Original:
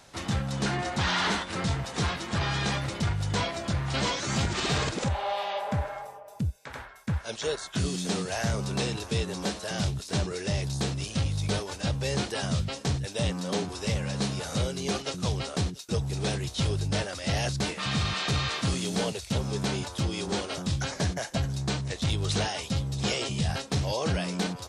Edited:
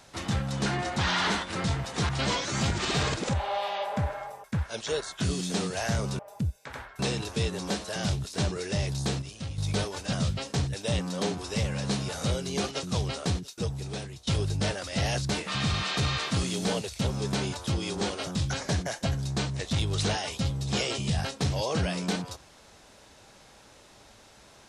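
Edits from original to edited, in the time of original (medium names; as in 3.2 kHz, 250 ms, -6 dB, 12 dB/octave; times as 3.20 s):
2.09–3.84 s: delete
6.19–6.99 s: move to 8.74 s
10.97–11.33 s: gain -8.5 dB
11.88–12.44 s: delete
15.69–16.58 s: fade out, to -15 dB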